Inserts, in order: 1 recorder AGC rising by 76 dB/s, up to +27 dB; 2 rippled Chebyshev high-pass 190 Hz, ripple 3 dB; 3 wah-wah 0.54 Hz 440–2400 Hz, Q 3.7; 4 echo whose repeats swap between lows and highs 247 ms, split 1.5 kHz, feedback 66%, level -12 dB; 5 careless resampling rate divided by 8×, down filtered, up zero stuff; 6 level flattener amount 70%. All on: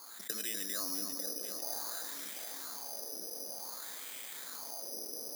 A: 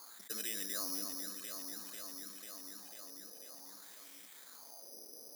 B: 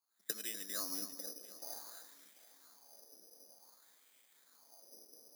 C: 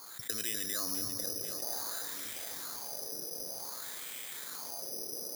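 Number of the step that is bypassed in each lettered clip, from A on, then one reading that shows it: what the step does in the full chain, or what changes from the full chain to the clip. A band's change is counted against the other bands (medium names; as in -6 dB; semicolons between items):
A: 1, momentary loudness spread change +7 LU; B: 6, crest factor change +7.5 dB; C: 2, loudness change +2.0 LU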